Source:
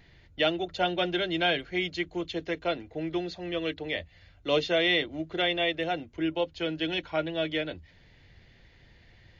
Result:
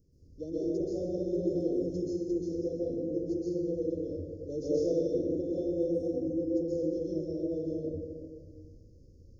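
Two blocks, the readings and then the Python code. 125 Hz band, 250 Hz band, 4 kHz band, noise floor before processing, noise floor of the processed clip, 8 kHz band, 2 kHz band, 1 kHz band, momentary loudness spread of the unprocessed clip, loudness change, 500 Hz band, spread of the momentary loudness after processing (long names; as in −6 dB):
0.0 dB, +1.5 dB, below −25 dB, −58 dBFS, −56 dBFS, can't be measured, below −40 dB, below −25 dB, 8 LU, −3.5 dB, −0.5 dB, 8 LU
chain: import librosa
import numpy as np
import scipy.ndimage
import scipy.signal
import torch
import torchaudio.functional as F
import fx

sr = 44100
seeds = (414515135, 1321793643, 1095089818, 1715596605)

y = scipy.signal.sosfilt(scipy.signal.cheby1(5, 1.0, [540.0, 5300.0], 'bandstop', fs=sr, output='sos'), x)
y = fx.peak_eq(y, sr, hz=620.0, db=-3.5, octaves=0.28)
y = fx.rev_plate(y, sr, seeds[0], rt60_s=1.9, hf_ratio=0.5, predelay_ms=115, drr_db=-9.0)
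y = F.gain(torch.from_numpy(y), -7.5).numpy()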